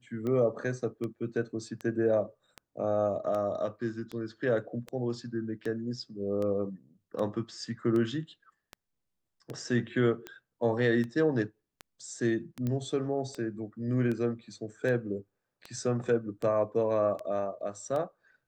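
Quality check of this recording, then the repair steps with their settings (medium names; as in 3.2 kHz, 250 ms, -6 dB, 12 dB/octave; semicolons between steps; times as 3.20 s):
tick 78 rpm -24 dBFS
4.88 s: dropout 3.4 ms
12.67 s: pop -21 dBFS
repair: de-click; interpolate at 4.88 s, 3.4 ms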